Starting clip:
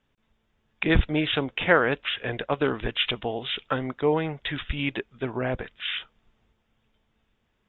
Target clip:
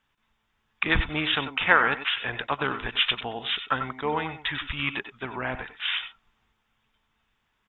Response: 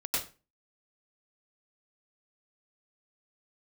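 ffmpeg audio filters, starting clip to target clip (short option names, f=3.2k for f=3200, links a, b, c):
-filter_complex "[0:a]asplit=2[a][b];[b]asetrate=22050,aresample=44100,atempo=2,volume=-16dB[c];[a][c]amix=inputs=2:normalize=0,lowshelf=f=730:t=q:w=1.5:g=-7.5,asplit=2[d][e];[1:a]atrim=start_sample=2205,atrim=end_sample=4410[f];[e][f]afir=irnorm=-1:irlink=0,volume=-10.5dB[g];[d][g]amix=inputs=2:normalize=0"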